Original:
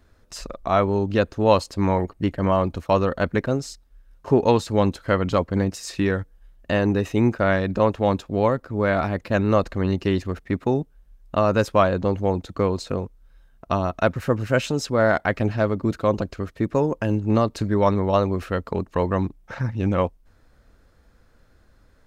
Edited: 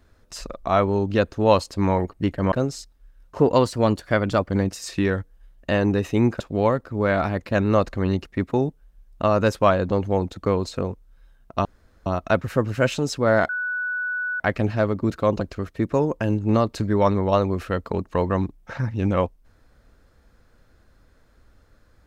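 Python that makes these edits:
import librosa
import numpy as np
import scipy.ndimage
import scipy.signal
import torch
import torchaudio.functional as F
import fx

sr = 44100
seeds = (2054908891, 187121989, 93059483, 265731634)

y = fx.edit(x, sr, fx.cut(start_s=2.52, length_s=0.91),
    fx.speed_span(start_s=4.3, length_s=1.21, speed=1.09),
    fx.cut(start_s=7.41, length_s=0.78),
    fx.cut(start_s=10.04, length_s=0.34),
    fx.insert_room_tone(at_s=13.78, length_s=0.41),
    fx.insert_tone(at_s=15.21, length_s=0.91, hz=1480.0, db=-23.5), tone=tone)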